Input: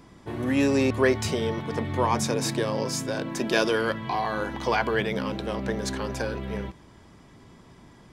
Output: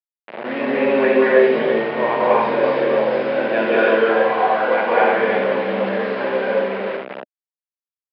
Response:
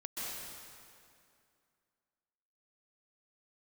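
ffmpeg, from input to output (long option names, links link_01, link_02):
-filter_complex "[0:a]bandreject=frequency=60:width_type=h:width=6,bandreject=frequency=120:width_type=h:width=6,bandreject=frequency=180:width_type=h:width=6,bandreject=frequency=240:width_type=h:width=6,bandreject=frequency=300:width_type=h:width=6,bandreject=frequency=360:width_type=h:width=6,bandreject=frequency=420:width_type=h:width=6,asplit=2[link_01][link_02];[link_02]adelay=46,volume=-12.5dB[link_03];[link_01][link_03]amix=inputs=2:normalize=0,aecho=1:1:48|74|87|333:0.299|0.376|0.316|0.376[link_04];[1:a]atrim=start_sample=2205,afade=type=out:start_time=0.3:duration=0.01,atrim=end_sample=13671,asetrate=31752,aresample=44100[link_05];[link_04][link_05]afir=irnorm=-1:irlink=0,aresample=11025,acrusher=bits=4:mix=0:aa=0.000001,aresample=44100,highpass=frequency=230:width=0.5412,highpass=frequency=230:width=1.3066,equalizer=frequency=290:width_type=q:width=4:gain=-8,equalizer=frequency=600:width_type=q:width=4:gain=7,equalizer=frequency=1200:width_type=q:width=4:gain=-3,lowpass=frequency=2500:width=0.5412,lowpass=frequency=2500:width=1.3066,volume=5dB"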